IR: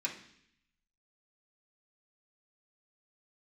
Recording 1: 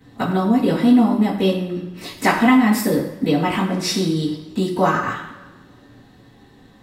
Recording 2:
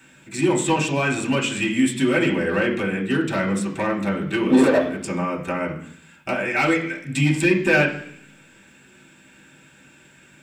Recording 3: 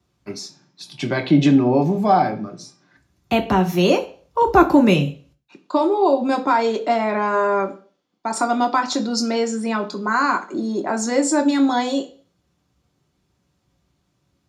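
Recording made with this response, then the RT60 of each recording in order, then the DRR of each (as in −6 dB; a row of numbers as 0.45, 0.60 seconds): 2; non-exponential decay, 0.65 s, 0.45 s; −15.0, −5.5, 3.0 decibels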